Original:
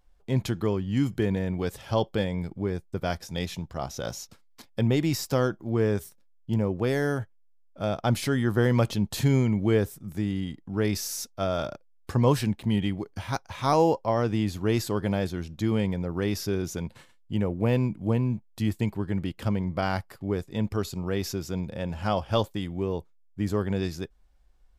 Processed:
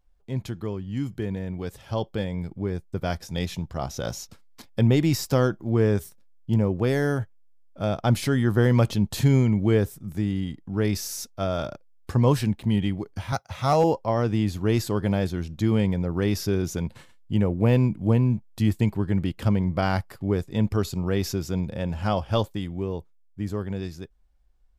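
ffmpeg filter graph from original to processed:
-filter_complex "[0:a]asettb=1/sr,asplit=3[s0][s1][s2];[s0]atrim=end=13.324[s3];[s1]atrim=start=13.32:end=13.84,asetpts=PTS-STARTPTS,afade=t=in:d=0.004:c=qsin,afade=t=out:st=0.516:d=0.004:c=qsin,highpass=f=67:w=0.5412,highpass=f=67:w=1.3066,aecho=1:1:1.5:0.5,atrim=end_sample=22932,volume=4.47,asoftclip=hard,volume=0.224[s4];[s2]atrim=start=13.836[s5];[s3][s4]acrossfade=d=0.004:c1=hsin:c2=qsin[s6];[s6][s5]acrossfade=d=0.004:c1=qsin:c2=hsin,lowshelf=f=200:g=4.5,dynaudnorm=f=320:g=17:m=3.76,volume=0.473"

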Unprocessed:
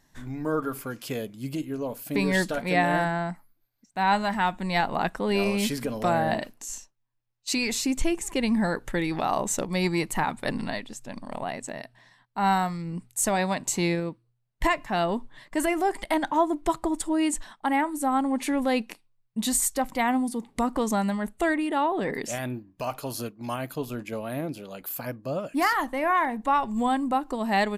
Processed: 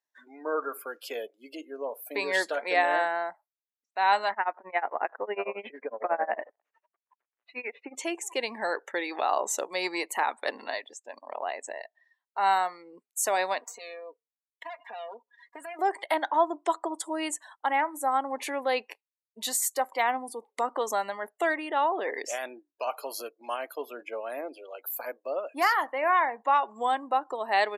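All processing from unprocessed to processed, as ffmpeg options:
-filter_complex "[0:a]asettb=1/sr,asplit=3[s0][s1][s2];[s0]atrim=end=4.314[s3];[s1]atrim=start=4.31:end=7.95,asetpts=PTS-STARTPTS,afade=t=in:d=0.004:c=qsin,afade=t=out:st=3.636:d=0.004:c=qsin,aeval=exprs='val(0)+0.5*0.0119*sgn(val(0))':c=same,lowpass=f=2300:w=0.5412,lowpass=f=2300:w=1.3066,tremolo=f=11:d=0.94[s4];[s2]atrim=start=7.946[s5];[s3][s4]acrossfade=d=0.004:c1=hsin:c2=qsin[s6];[s6][s5]acrossfade=d=0.004:c1=qsin:c2=hsin,asettb=1/sr,asplit=3[s7][s8][s9];[s7]atrim=end=13.614[s10];[s8]atrim=start=13.61:end=15.79,asetpts=PTS-STARTPTS,afade=t=in:d=0.004:c=qsin,afade=t=out:st=2.176:d=0.004:c=qsin,aeval=exprs='if(lt(val(0),0),0.251*val(0),val(0))':c=same,aecho=1:1:4.2:0.95,atrim=end_sample=96138,acompressor=threshold=0.02:ratio=5:attack=3.2:release=140:knee=1:detection=peak[s11];[s9]atrim=start=15.786[s12];[s10][s11]acrossfade=d=0.004:c1=hsin:c2=qsin[s13];[s13][s12]acrossfade=d=0.004:c1=qsin:c2=hsin,highpass=f=420:w=0.5412,highpass=f=420:w=1.3066,afftdn=nr=25:nf=-45,equalizer=f=8600:t=o:w=0.34:g=-5"

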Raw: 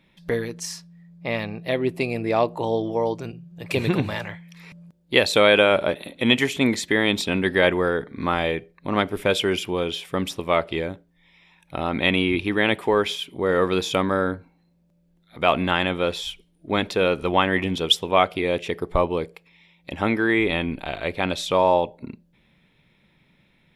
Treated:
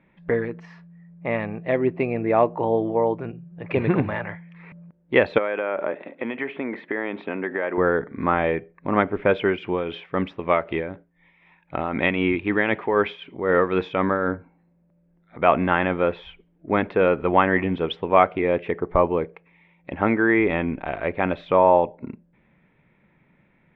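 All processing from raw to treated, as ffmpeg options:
-filter_complex "[0:a]asettb=1/sr,asplit=3[s0][s1][s2];[s0]atrim=end=5.384[s3];[s1]atrim=start=5.38:end=7.78,asetpts=PTS-STARTPTS,afade=t=in:d=0.004:c=qsin,afade=t=out:st=2.396:d=0.004:c=qsin,acompressor=threshold=0.0891:ratio=12:attack=3.2:release=140:knee=1:detection=peak,highpass=280,lowpass=2900[s4];[s2]atrim=start=7.776[s5];[s3][s4]acrossfade=d=0.004:c1=hsin:c2=qsin[s6];[s6][s5]acrossfade=d=0.004:c1=qsin:c2=hsin,asettb=1/sr,asplit=3[s7][s8][s9];[s7]atrim=end=9.454[s10];[s8]atrim=start=9.45:end=14.28,asetpts=PTS-STARTPTS,afade=t=in:d=0.004:c=qsin,afade=t=out:st=4.826:d=0.004:c=qsin,highshelf=f=2900:g=8.5,tremolo=f=3.9:d=0.47[s11];[s9]atrim=start=14.276[s12];[s10][s11]acrossfade=d=0.004:c1=hsin:c2=qsin[s13];[s13][s12]acrossfade=d=0.004:c1=qsin:c2=hsin,lowpass=f=2100:w=0.5412,lowpass=f=2100:w=1.3066,lowshelf=f=100:g=-6,volume=1.33"

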